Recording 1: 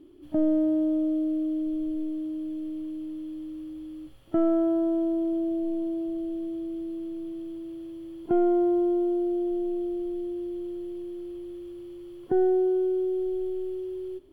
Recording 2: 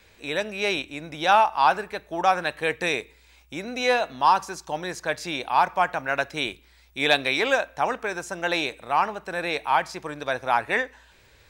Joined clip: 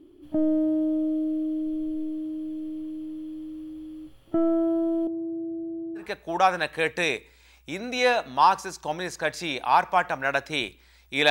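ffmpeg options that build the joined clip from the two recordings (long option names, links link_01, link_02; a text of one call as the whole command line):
ffmpeg -i cue0.wav -i cue1.wav -filter_complex "[0:a]asettb=1/sr,asplit=3[link_01][link_02][link_03];[link_01]atrim=end=5.074[link_04];[link_02]atrim=start=5.07:end=6.07,asetpts=PTS-STARTPTS,afade=type=in:duration=0.004:curve=qsin,afade=type=out:start_time=0.996:duration=0.004:curve=qsin,bandpass=frequency=150:width_type=q:width=0.78:csg=0[link_05];[link_03]atrim=start=6.066[link_06];[link_04][link_05]acrossfade=duration=0.004:curve1=hsin:curve2=qsin[link_07];[link_07][link_06]acrossfade=duration=0.004:curve1=qsin:curve2=hsin,apad=whole_dur=11.3,atrim=end=11.3,atrim=end=6.07,asetpts=PTS-STARTPTS[link_08];[1:a]atrim=start=1.79:end=7.14,asetpts=PTS-STARTPTS[link_09];[link_08][link_09]acrossfade=duration=0.12:curve1=tri:curve2=tri" out.wav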